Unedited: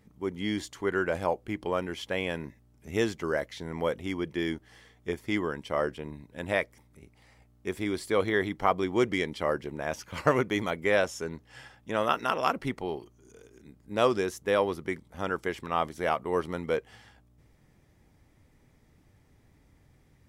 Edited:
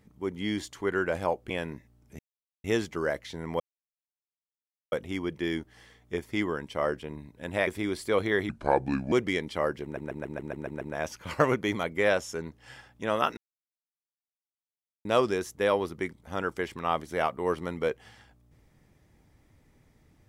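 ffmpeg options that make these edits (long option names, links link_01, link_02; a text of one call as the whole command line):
ffmpeg -i in.wav -filter_complex "[0:a]asplit=16[link_01][link_02][link_03][link_04][link_05][link_06][link_07][link_08][link_09][link_10][link_11][link_12][link_13][link_14][link_15][link_16];[link_01]atrim=end=1.502[link_17];[link_02]atrim=start=2.218:end=2.91,asetpts=PTS-STARTPTS,afade=type=out:start_time=0.688:duration=0.004:curve=hsin,apad=pad_dur=0.45[link_18];[link_03]atrim=start=2.91:end=3.87,asetpts=PTS-STARTPTS,afade=type=in:duration=0.004:curve=hsin,afade=type=out:start_time=0.956:duration=0.004:curve=hsin,apad=pad_dur=1.32[link_19];[link_04]atrim=start=3.87:end=6.622,asetpts=PTS-STARTPTS,afade=type=in:duration=0.004:curve=hsin[link_20];[link_05]atrim=start=7.688:end=8.514[link_21];[link_06]atrim=start=8.51:end=8.97,asetpts=PTS-STARTPTS,asetrate=32193,aresample=44100,atrim=end_sample=27789,asetpts=PTS-STARTPTS[link_22];[link_07]atrim=start=8.966:end=9.822[link_23];[link_08]atrim=start=9.678:end=9.822[link_24];[link_09]atrim=start=9.678:end=9.822[link_25];[link_10]atrim=start=9.678:end=9.822[link_26];[link_11]atrim=start=9.678:end=9.822[link_27];[link_12]atrim=start=9.678:end=9.822[link_28];[link_13]atrim=start=9.678:end=9.822[link_29];[link_14]atrim=start=9.678:end=12.24,asetpts=PTS-STARTPTS,afade=type=out:start_time=2.558:duration=0.004:curve=hsin[link_30];[link_15]atrim=start=12.24:end=13.92,asetpts=PTS-STARTPTS,volume=0[link_31];[link_16]atrim=start=13.92,asetpts=PTS-STARTPTS,afade=type=in:duration=0.004:curve=hsin[link_32];[link_18][link_19][link_20]concat=n=3:v=0:a=1[link_33];[link_17][link_33]acrossfade=duration=0.004:curve1=hsin:curve2=hsin[link_34];[link_34][link_21]acrossfade=duration=0.004:curve1=hsin:curve2=hsin[link_35];[link_35][link_22]acrossfade=duration=0.004:curve1=hsin:curve2=hsin[link_36];[link_36][link_23]acrossfade=duration=0.004:curve1=hsin:curve2=hsin[link_37];[link_37][link_24]acrossfade=duration=0.004:curve1=hsin:curve2=hsin[link_38];[link_38][link_25]acrossfade=duration=0.004:curve1=hsin:curve2=hsin[link_39];[link_39][link_26]acrossfade=duration=0.004:curve1=hsin:curve2=hsin[link_40];[link_40][link_27]acrossfade=duration=0.004:curve1=hsin:curve2=hsin[link_41];[link_41][link_28]acrossfade=duration=0.004:curve1=hsin:curve2=hsin[link_42];[link_42][link_29]acrossfade=duration=0.004:curve1=hsin:curve2=hsin[link_43];[link_30][link_31][link_32]concat=n=3:v=0:a=1[link_44];[link_43][link_44]acrossfade=duration=0.004:curve1=hsin:curve2=hsin" out.wav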